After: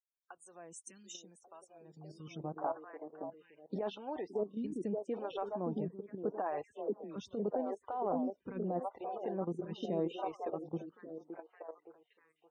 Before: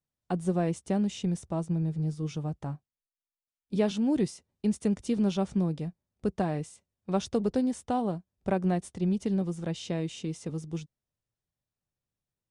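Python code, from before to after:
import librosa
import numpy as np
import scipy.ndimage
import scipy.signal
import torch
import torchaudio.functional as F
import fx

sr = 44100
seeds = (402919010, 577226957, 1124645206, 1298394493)

y = fx.echo_stepped(x, sr, ms=569, hz=320.0, octaves=0.7, feedback_pct=70, wet_db=-3)
y = fx.level_steps(y, sr, step_db=11)
y = fx.high_shelf(y, sr, hz=2100.0, db=9.5, at=(2.74, 3.95))
y = fx.dispersion(y, sr, late='lows', ms=80.0, hz=710.0, at=(6.63, 7.16))
y = fx.spec_topn(y, sr, count=64)
y = fx.filter_sweep_bandpass(y, sr, from_hz=7600.0, to_hz=860.0, start_s=1.73, end_s=2.62, q=1.1)
y = fx.over_compress(y, sr, threshold_db=-41.0, ratio=-1.0)
y = fx.transient(y, sr, attack_db=1, sustain_db=5, at=(9.84, 10.36), fade=0.02)
y = fx.stagger_phaser(y, sr, hz=0.8)
y = y * 10.0 ** (9.0 / 20.0)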